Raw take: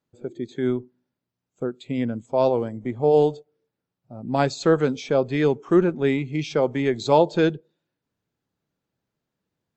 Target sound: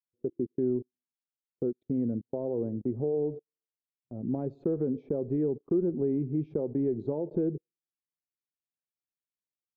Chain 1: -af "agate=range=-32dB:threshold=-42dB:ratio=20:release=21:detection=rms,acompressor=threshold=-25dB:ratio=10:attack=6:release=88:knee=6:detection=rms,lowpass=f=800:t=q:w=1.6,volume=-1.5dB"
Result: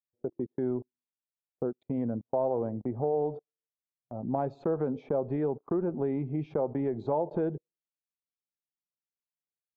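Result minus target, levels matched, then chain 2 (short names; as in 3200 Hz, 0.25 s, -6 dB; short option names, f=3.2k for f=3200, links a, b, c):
1000 Hz band +14.5 dB
-af "agate=range=-32dB:threshold=-42dB:ratio=20:release=21:detection=rms,acompressor=threshold=-25dB:ratio=10:attack=6:release=88:knee=6:detection=rms,lowpass=f=390:t=q:w=1.6,volume=-1.5dB"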